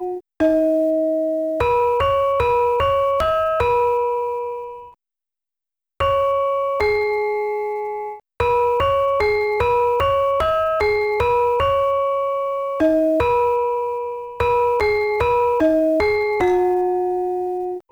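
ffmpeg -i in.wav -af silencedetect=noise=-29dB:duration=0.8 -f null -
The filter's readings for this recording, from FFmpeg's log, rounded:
silence_start: 4.77
silence_end: 6.00 | silence_duration: 1.23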